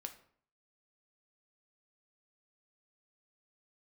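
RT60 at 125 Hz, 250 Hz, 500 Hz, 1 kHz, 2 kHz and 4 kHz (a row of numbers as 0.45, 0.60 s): 0.65, 0.60, 0.60, 0.55, 0.50, 0.40 s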